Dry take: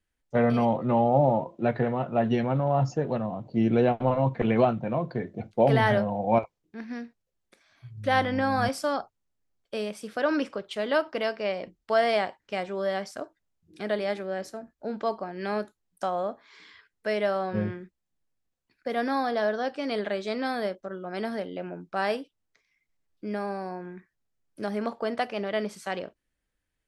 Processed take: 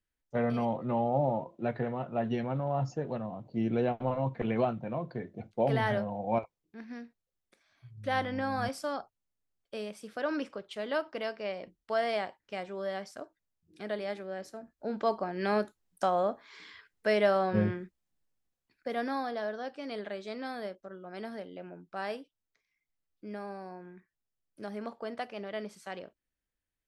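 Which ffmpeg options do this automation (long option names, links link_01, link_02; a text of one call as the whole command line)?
ffmpeg -i in.wav -af "volume=1dB,afade=type=in:start_time=14.48:duration=0.81:silence=0.398107,afade=type=out:start_time=17.72:duration=1.71:silence=0.316228" out.wav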